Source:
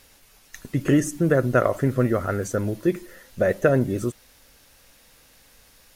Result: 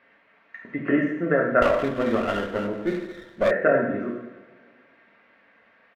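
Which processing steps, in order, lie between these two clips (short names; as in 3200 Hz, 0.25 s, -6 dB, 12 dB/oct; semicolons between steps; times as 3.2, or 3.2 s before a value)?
speaker cabinet 310–2100 Hz, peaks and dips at 430 Hz -7 dB, 840 Hz -5 dB, 2000 Hz +3 dB; comb 4.4 ms, depth 36%; two-slope reverb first 0.84 s, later 2.2 s, DRR -1.5 dB; 1.62–3.51 running maximum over 9 samples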